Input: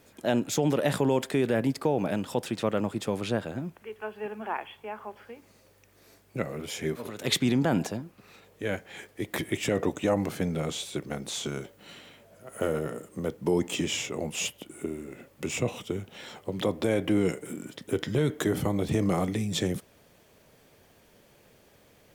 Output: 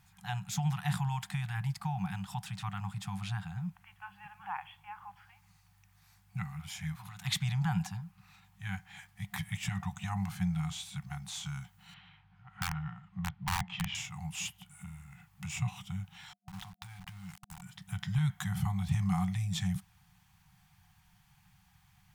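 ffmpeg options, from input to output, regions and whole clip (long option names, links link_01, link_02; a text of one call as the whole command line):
ffmpeg -i in.wav -filter_complex "[0:a]asettb=1/sr,asplit=3[link_01][link_02][link_03];[link_01]atrim=end=11.944[link_04];[link_02]atrim=start=11.94:end=13.95,asetpts=PTS-STARTPTS,afade=type=in:duration=0.004:curve=qsin,afade=type=out:start_time=2.006:duration=0.004:curve=qsin,lowpass=frequency=3700:width=0.5412,lowpass=frequency=3700:width=1.3066,aeval=exprs='(mod(8.91*val(0)+1,2)-1)/8.91':channel_layout=same[link_05];[link_03]atrim=start=13.946[link_06];[link_04][link_05]acrossfade=duration=0.004:curve1=hsin:curve2=qsin[link_07];[link_07][link_06]acrossfade=duration=0.004:curve1=qsin:curve2=hsin,asettb=1/sr,asplit=3[link_08][link_09][link_10];[link_08]atrim=end=16.334[link_11];[link_09]atrim=start=16.33:end=17.62,asetpts=PTS-STARTPTS,afade=type=in:duration=0.004:curve=qsin,afade=type=out:start_time=1.286:duration=0.004:curve=qsin,aeval=exprs='val(0)*gte(abs(val(0)),0.0251)':channel_layout=same,acompressor=threshold=-33dB:ratio=16:attack=3.2:release=140:knee=1:detection=peak[link_12];[link_10]atrim=start=17.616[link_13];[link_11][link_12]acrossfade=duration=0.004:curve1=hsin:curve2=qsin[link_14];[link_14][link_13]acrossfade=duration=0.004:curve1=qsin:curve2=hsin,afftfilt=real='re*(1-between(b*sr/4096,200,720))':imag='im*(1-between(b*sr/4096,200,720))':win_size=4096:overlap=0.75,lowshelf=frequency=440:gain=8,volume=-7dB" out.wav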